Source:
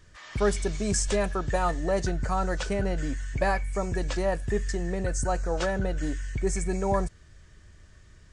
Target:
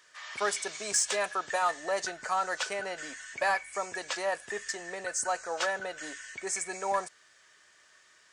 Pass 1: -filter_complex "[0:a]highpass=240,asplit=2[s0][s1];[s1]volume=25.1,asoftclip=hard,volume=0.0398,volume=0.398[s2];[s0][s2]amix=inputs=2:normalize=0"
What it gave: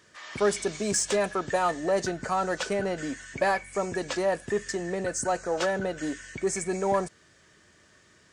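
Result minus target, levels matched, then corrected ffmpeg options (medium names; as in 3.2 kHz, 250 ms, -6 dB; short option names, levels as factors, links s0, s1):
250 Hz band +12.0 dB
-filter_complex "[0:a]highpass=820,asplit=2[s0][s1];[s1]volume=25.1,asoftclip=hard,volume=0.0398,volume=0.398[s2];[s0][s2]amix=inputs=2:normalize=0"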